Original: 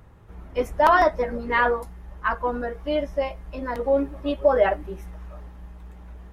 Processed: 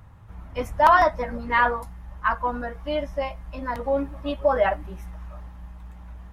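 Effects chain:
graphic EQ with 15 bands 100 Hz +6 dB, 400 Hz −10 dB, 1,000 Hz +3 dB

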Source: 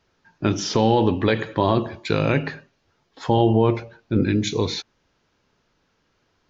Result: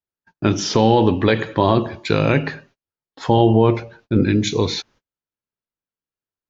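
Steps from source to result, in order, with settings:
noise gate −52 dBFS, range −34 dB
level +3.5 dB

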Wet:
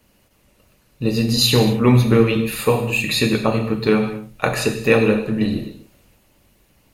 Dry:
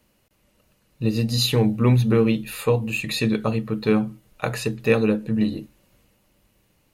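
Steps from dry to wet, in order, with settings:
reverb whose tail is shaped and stops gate 290 ms falling, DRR 2 dB
harmonic and percussive parts rebalanced percussive +5 dB
level +1.5 dB

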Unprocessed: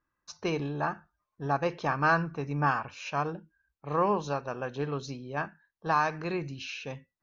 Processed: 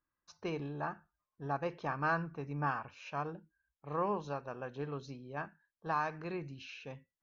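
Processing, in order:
high-shelf EQ 5,500 Hz −11 dB
level −7.5 dB

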